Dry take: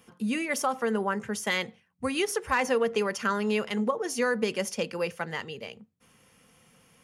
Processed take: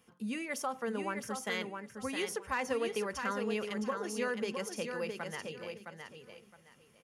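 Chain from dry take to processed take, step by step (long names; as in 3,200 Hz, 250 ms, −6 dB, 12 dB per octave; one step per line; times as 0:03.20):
repeating echo 664 ms, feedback 22%, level −6 dB
level −8.5 dB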